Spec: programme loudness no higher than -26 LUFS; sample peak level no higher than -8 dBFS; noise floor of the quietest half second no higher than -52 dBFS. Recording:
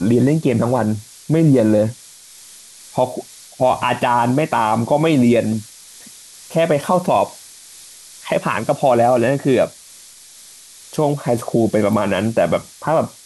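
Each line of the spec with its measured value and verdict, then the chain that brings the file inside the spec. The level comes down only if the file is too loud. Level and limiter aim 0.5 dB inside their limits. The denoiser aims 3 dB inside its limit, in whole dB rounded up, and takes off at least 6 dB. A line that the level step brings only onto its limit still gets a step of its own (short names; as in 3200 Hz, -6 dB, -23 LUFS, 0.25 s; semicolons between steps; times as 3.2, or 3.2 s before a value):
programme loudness -17.5 LUFS: fail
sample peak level -5.0 dBFS: fail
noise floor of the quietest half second -42 dBFS: fail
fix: denoiser 6 dB, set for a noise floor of -42 dBFS; gain -9 dB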